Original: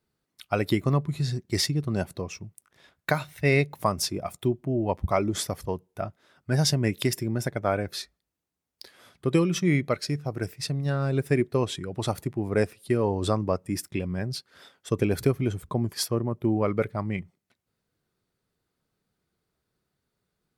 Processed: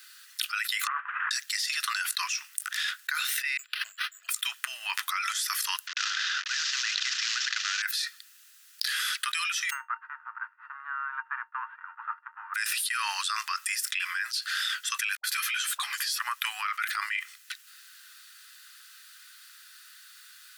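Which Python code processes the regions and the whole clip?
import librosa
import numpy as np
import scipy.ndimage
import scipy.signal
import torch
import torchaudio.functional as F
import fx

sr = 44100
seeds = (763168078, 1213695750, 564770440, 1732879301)

y = fx.chain(x, sr, fx.cvsd(bps=16000),
    fx.lowpass(hz=1200.0, slope=24), at=(0.87, 1.31))
y = fx.chain(y, sr, fx.cheby2_bandstop(low_hz=1200.0, high_hz=6100.0, order=4, stop_db=70),
    fx.resample_linear(factor=6), at=(3.57, 4.29))
y = fx.chain(y, sr, fx.cvsd(bps=32000),
    fx.spectral_comp(ratio=2.0), at=(5.87, 7.82))
y = fx.envelope_flatten(y, sr, power=0.3, at=(9.69, 12.54), fade=0.02)
y = fx.steep_lowpass(y, sr, hz=1200.0, slope=36, at=(9.69, 12.54), fade=0.02)
y = fx.comb_fb(y, sr, f0_hz=920.0, decay_s=0.18, harmonics='odd', damping=0.0, mix_pct=90, at=(9.69, 12.54), fade=0.02)
y = fx.chain(y, sr, fx.peak_eq(hz=3400.0, db=3.5, octaves=1.4),
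    fx.dispersion(late='highs', ms=88.0, hz=400.0),
    fx.ensemble(), at=(15.15, 16.19))
y = scipy.signal.sosfilt(scipy.signal.butter(8, 1400.0, 'highpass', fs=sr, output='sos'), y)
y = fx.notch(y, sr, hz=2200.0, q=7.8)
y = fx.env_flatten(y, sr, amount_pct=100)
y = y * 10.0 ** (-6.0 / 20.0)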